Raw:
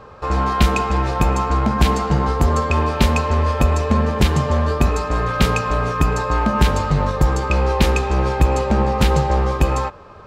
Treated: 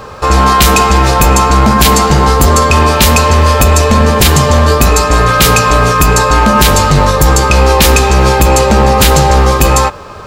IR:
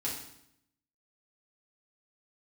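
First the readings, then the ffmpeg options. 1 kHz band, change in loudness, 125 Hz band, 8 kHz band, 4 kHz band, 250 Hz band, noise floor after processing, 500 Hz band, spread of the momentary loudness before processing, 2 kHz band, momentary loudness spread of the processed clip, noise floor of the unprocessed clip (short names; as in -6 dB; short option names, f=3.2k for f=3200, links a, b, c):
+12.0 dB, +10.5 dB, +8.5 dB, +21.0 dB, +15.5 dB, +8.5 dB, -28 dBFS, +11.0 dB, 3 LU, +13.0 dB, 2 LU, -40 dBFS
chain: -af "aemphasis=mode=production:type=75fm,apsyclip=14.5dB,volume=-1.5dB"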